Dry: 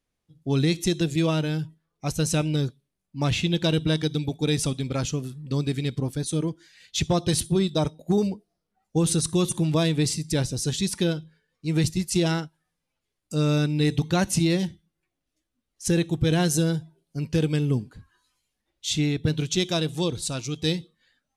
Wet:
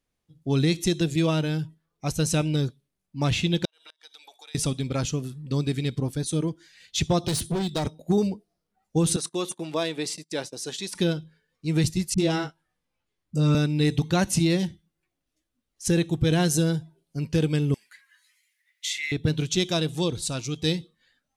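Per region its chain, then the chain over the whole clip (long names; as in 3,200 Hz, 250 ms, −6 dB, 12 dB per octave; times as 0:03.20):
0:03.65–0:04.55: high-pass filter 790 Hz 24 dB per octave + downward compressor 5 to 1, threshold −45 dBFS + gate with flip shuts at −32 dBFS, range −29 dB
0:07.24–0:07.87: gain into a clipping stage and back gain 23.5 dB + multiband upward and downward compressor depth 40%
0:09.16–0:10.95: noise gate −32 dBFS, range −23 dB + high-pass filter 410 Hz + high-shelf EQ 4,100 Hz −6 dB
0:12.14–0:13.55: high-shelf EQ 4,700 Hz −7 dB + double-tracking delay 21 ms −6 dB + all-pass dispersion highs, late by 41 ms, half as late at 300 Hz
0:17.74–0:19.12: high-shelf EQ 6,700 Hz +9.5 dB + downward compressor, threshold −28 dBFS + high-pass with resonance 2,000 Hz, resonance Q 11
whole clip: no processing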